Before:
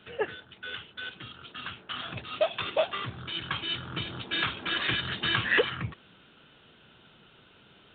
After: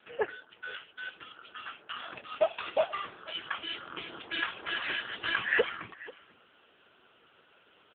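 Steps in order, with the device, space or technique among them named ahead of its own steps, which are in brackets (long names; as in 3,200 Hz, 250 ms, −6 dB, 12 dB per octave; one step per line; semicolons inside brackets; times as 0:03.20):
0:02.91–0:03.55: high-pass filter 170 Hz 12 dB per octave
satellite phone (band-pass filter 360–3,000 Hz; single-tap delay 489 ms −20.5 dB; level +1.5 dB; AMR narrowband 6.7 kbit/s 8,000 Hz)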